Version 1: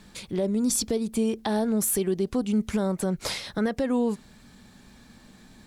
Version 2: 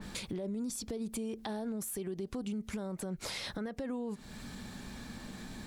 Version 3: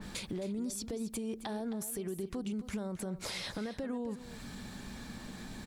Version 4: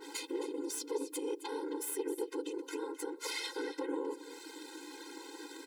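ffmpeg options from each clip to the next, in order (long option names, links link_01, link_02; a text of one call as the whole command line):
ffmpeg -i in.wav -af "alimiter=level_in=3dB:limit=-24dB:level=0:latency=1:release=133,volume=-3dB,acompressor=threshold=-47dB:ratio=2.5,adynamicequalizer=threshold=0.00112:dfrequency=2600:dqfactor=0.7:tfrequency=2600:tqfactor=0.7:attack=5:release=100:ratio=0.375:range=2:mode=cutabove:tftype=highshelf,volume=7dB" out.wav
ffmpeg -i in.wav -af "aecho=1:1:266:0.211" out.wav
ffmpeg -i in.wav -af "afftfilt=real='hypot(re,im)*cos(2*PI*random(0))':imag='hypot(re,im)*sin(2*PI*random(1))':win_size=512:overlap=0.75,aeval=exprs='(tanh(79.4*val(0)+0.75)-tanh(0.75))/79.4':channel_layout=same,afftfilt=real='re*eq(mod(floor(b*sr/1024/270),2),1)':imag='im*eq(mod(floor(b*sr/1024/270),2),1)':win_size=1024:overlap=0.75,volume=14.5dB" out.wav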